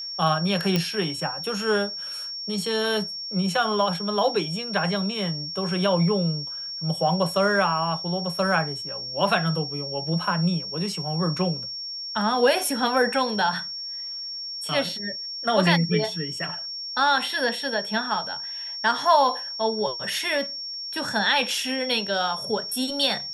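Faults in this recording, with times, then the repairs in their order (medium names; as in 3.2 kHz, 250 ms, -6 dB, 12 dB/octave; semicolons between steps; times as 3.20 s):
whine 5.5 kHz -31 dBFS
0.76 s: pop -8 dBFS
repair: de-click; band-stop 5.5 kHz, Q 30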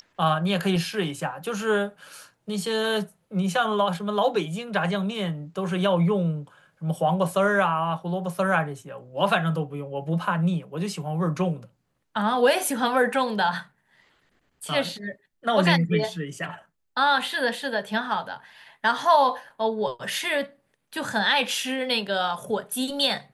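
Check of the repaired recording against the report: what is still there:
nothing left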